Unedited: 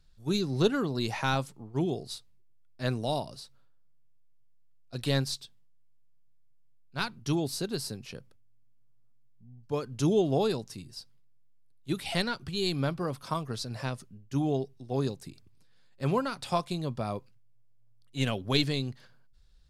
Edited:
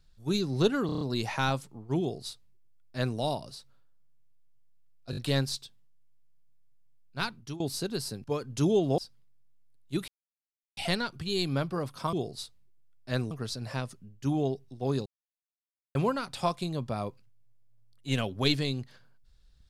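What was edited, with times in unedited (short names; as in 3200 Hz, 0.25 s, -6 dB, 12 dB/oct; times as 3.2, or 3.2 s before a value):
0.86 stutter 0.03 s, 6 plays
1.85–3.03 copy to 13.4
4.96 stutter 0.02 s, 4 plays
7.09–7.39 fade out, to -20.5 dB
8.03–9.66 cut
10.4–10.94 cut
12.04 insert silence 0.69 s
15.15–16.04 mute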